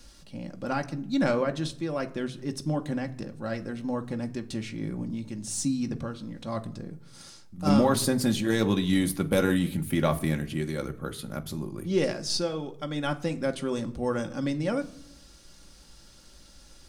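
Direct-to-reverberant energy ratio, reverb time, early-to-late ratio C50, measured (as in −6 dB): 4.5 dB, non-exponential decay, 17.5 dB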